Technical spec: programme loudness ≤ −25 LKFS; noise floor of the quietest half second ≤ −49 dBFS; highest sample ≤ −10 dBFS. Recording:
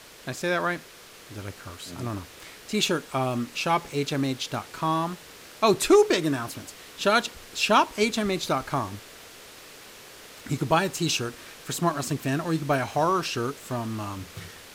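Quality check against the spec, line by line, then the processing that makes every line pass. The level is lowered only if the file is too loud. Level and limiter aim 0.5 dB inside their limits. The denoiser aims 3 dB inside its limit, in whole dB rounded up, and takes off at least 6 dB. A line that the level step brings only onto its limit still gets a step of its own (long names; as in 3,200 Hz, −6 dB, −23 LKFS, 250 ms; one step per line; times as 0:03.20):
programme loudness −26.0 LKFS: in spec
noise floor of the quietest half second −48 dBFS: out of spec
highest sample −9.0 dBFS: out of spec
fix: broadband denoise 6 dB, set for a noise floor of −48 dBFS
brickwall limiter −10.5 dBFS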